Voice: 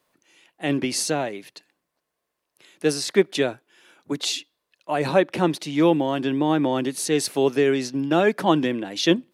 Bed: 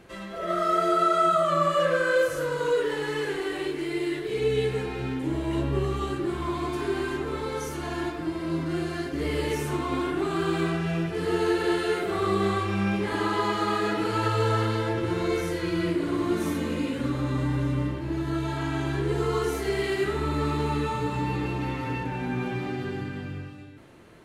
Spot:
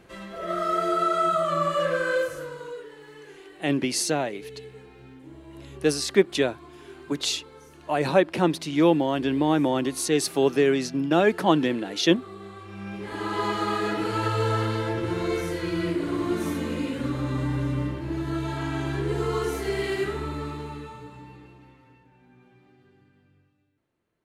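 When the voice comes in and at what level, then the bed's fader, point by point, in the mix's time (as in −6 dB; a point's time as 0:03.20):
3.00 s, −1.0 dB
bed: 0:02.14 −1.5 dB
0:02.92 −17 dB
0:12.53 −17 dB
0:13.44 −0.5 dB
0:19.99 −0.5 dB
0:22.02 −27 dB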